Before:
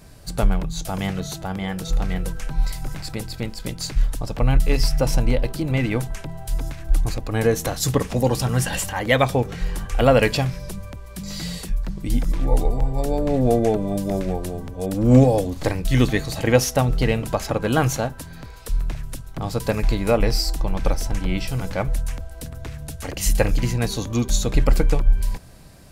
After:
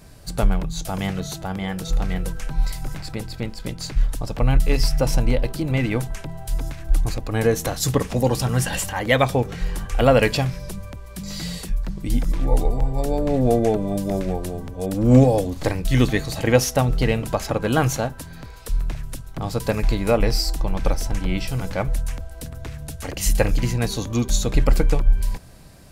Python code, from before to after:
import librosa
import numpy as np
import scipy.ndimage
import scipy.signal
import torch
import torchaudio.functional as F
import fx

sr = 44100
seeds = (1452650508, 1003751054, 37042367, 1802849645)

y = fx.high_shelf(x, sr, hz=4800.0, db=-5.5, at=(2.98, 4.09))